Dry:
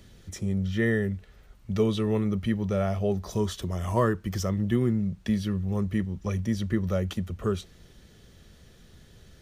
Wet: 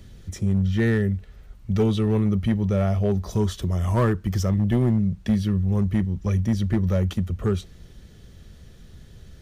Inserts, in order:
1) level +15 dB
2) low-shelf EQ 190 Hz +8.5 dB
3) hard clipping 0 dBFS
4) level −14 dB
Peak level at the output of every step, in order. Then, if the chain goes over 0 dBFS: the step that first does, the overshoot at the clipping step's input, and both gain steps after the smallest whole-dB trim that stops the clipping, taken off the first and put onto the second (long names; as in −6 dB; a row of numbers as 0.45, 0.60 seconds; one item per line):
+4.5, +6.0, 0.0, −14.0 dBFS
step 1, 6.0 dB
step 1 +9 dB, step 4 −8 dB